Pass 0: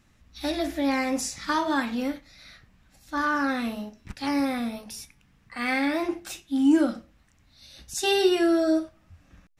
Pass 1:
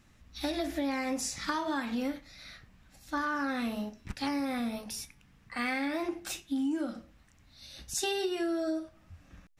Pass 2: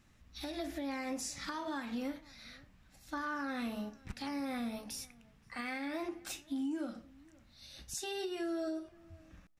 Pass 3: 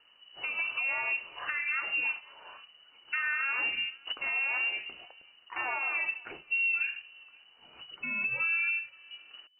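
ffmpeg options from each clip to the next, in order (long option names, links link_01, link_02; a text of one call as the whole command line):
ffmpeg -i in.wav -af "acompressor=threshold=-29dB:ratio=8" out.wav
ffmpeg -i in.wav -filter_complex "[0:a]alimiter=level_in=2dB:limit=-24dB:level=0:latency=1:release=277,volume=-2dB,asplit=2[link_01][link_02];[link_02]adelay=524.8,volume=-24dB,highshelf=frequency=4000:gain=-11.8[link_03];[link_01][link_03]amix=inputs=2:normalize=0,volume=-4dB" out.wav
ffmpeg -i in.wav -filter_complex "[0:a]asplit=2[link_01][link_02];[link_02]aeval=exprs='sgn(val(0))*max(abs(val(0))-0.00133,0)':channel_layout=same,volume=-7dB[link_03];[link_01][link_03]amix=inputs=2:normalize=0,lowpass=frequency=2600:width_type=q:width=0.5098,lowpass=frequency=2600:width_type=q:width=0.6013,lowpass=frequency=2600:width_type=q:width=0.9,lowpass=frequency=2600:width_type=q:width=2.563,afreqshift=-3000,volume=4dB" out.wav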